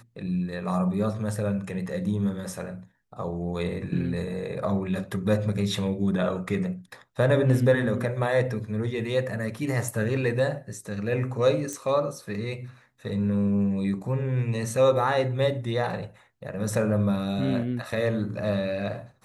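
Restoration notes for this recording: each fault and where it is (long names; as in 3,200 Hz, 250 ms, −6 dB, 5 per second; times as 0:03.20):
0:11.73: click −20 dBFS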